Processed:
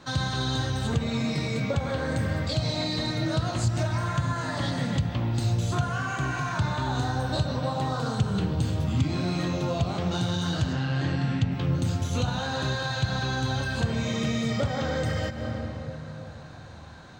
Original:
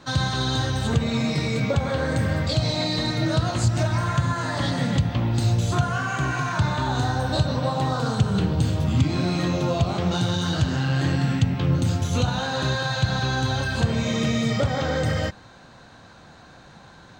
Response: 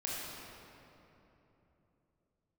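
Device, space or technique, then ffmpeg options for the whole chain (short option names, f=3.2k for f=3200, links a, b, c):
ducked reverb: -filter_complex "[0:a]asettb=1/sr,asplit=3[a][b][c];[a]atrim=end=10.734[d];[b]atrim=start=10.73:end=11.52,asetpts=PTS-STARTPTS,afade=t=in:d=0.004:c=qsin,afade=t=out:st=0.786:d=0.004:c=qsin,lowpass=5.4k[e];[c]atrim=start=11.516[f];[d][e]acrossfade=d=0.004:c1=hsin:c2=qsin[g];[g][f]acrossfade=d=0.004:c1=qsin:c2=hsin,asplit=3[h][i][j];[1:a]atrim=start_sample=2205[k];[i][k]afir=irnorm=-1:irlink=0[l];[j]apad=whole_len=758196[m];[l][m]sidechaincompress=threshold=-36dB:ratio=8:attack=16:release=154,volume=-3.5dB[n];[h][n]amix=inputs=2:normalize=0,volume=-5dB"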